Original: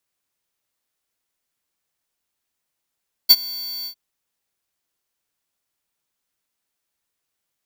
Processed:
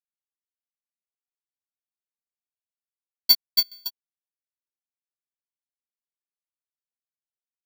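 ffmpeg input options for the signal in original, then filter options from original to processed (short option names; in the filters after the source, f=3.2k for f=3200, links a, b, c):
-f lavfi -i "aevalsrc='0.447*(2*lt(mod(4530*t,1),0.5)-1)':d=0.654:s=44100,afade=t=in:d=0.019,afade=t=out:st=0.019:d=0.043:silence=0.0708,afade=t=out:st=0.57:d=0.084"
-filter_complex "[0:a]asplit=2[a][b];[b]aecho=0:1:279|558|837:0.562|0.09|0.0144[c];[a][c]amix=inputs=2:normalize=0,acrusher=bits=3:mix=0:aa=0.5,aeval=exprs='val(0)*pow(10,-19*if(lt(mod(7*n/s,1),2*abs(7)/1000),1-mod(7*n/s,1)/(2*abs(7)/1000),(mod(7*n/s,1)-2*abs(7)/1000)/(1-2*abs(7)/1000))/20)':c=same"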